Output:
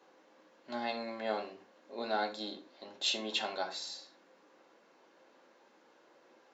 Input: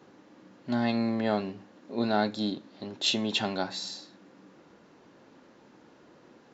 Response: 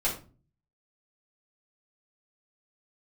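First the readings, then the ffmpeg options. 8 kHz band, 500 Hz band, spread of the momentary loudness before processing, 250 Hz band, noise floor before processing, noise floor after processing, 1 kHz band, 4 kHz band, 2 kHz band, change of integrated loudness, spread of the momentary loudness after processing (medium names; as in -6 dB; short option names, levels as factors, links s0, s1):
no reading, -6.0 dB, 14 LU, -15.5 dB, -58 dBFS, -65 dBFS, -4.0 dB, -5.0 dB, -4.5 dB, -7.5 dB, 15 LU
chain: -filter_complex "[0:a]highpass=450,asplit=2[s0][s1];[1:a]atrim=start_sample=2205,atrim=end_sample=6174[s2];[s1][s2]afir=irnorm=-1:irlink=0,volume=0.355[s3];[s0][s3]amix=inputs=2:normalize=0,volume=0.398"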